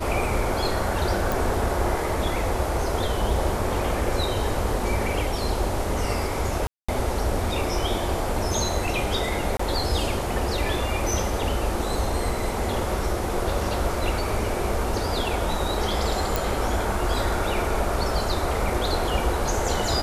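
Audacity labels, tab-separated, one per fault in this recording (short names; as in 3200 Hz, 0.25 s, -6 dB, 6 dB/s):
1.320000	1.320000	pop
6.670000	6.880000	gap 0.215 s
9.570000	9.590000	gap 24 ms
16.360000	16.360000	pop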